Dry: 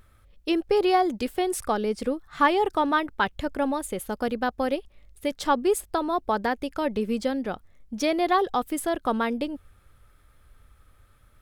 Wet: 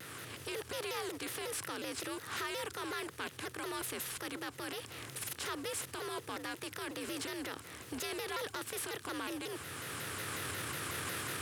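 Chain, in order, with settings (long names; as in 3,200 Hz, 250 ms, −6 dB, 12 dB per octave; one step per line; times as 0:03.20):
compressor on every frequency bin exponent 0.4
camcorder AGC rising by 13 dB per second
guitar amp tone stack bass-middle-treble 6-0-2
leveller curve on the samples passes 1
brickwall limiter −31 dBFS, peak gain reduction 7.5 dB
low-shelf EQ 170 Hz −10.5 dB
frequency shifter +73 Hz
buffer that repeats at 0:04.03/0:05.19, samples 2,048, times 2
pitch modulation by a square or saw wave saw down 5.5 Hz, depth 250 cents
level +2 dB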